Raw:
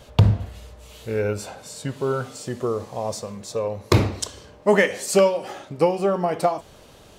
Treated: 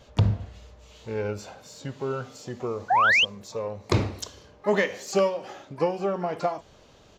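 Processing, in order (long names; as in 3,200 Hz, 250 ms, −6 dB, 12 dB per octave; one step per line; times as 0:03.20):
sound drawn into the spectrogram rise, 0:02.90–0:03.25, 690–3,300 Hz −13 dBFS
downsampling to 16,000 Hz
pitch-shifted copies added +12 semitones −18 dB
level −6 dB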